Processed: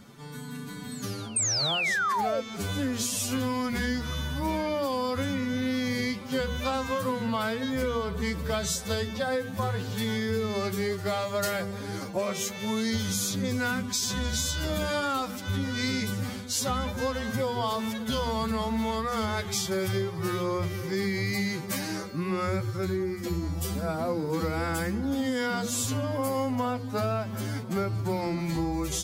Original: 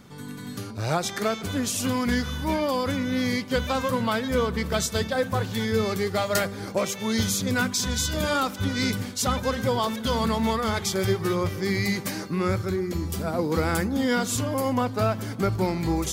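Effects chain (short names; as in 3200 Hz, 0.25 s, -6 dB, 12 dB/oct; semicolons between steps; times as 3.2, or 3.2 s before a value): notches 60/120/180/240/300/360/420/480 Hz; time stretch by phase-locked vocoder 1.8×; painted sound fall, 1.36–2.41, 490–8800 Hz -20 dBFS; compressor, threshold -25 dBFS, peak gain reduction 9 dB; reverse echo 0.447 s -20.5 dB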